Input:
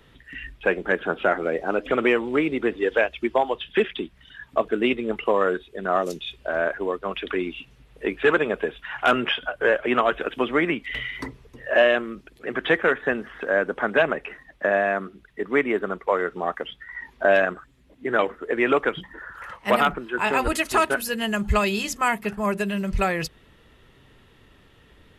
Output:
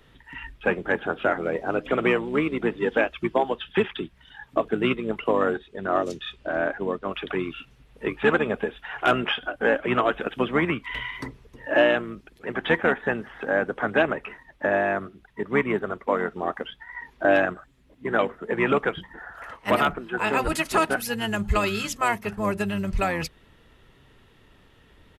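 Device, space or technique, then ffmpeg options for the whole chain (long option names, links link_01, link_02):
octave pedal: -filter_complex "[0:a]asplit=2[link_01][link_02];[link_02]asetrate=22050,aresample=44100,atempo=2,volume=-9dB[link_03];[link_01][link_03]amix=inputs=2:normalize=0,asettb=1/sr,asplit=3[link_04][link_05][link_06];[link_04]atrim=end=5.544[link_07];[link_05]atrim=start=5.54:end=7.07,asetpts=PTS-STARTPTS,afade=type=in:duration=0.004:curve=qsin,afade=type=out:start_time=1.526:duration=0.004:curve=qsin,lowpass=7900[link_08];[link_06]atrim=start=7.066[link_09];[link_07][link_08]acrossfade=duration=0.004:curve1=hsin:curve2=qsin[link_10];[link_10][link_09]acrossfade=duration=0.004:curve1=qsin:curve2=hsin,volume=-2dB"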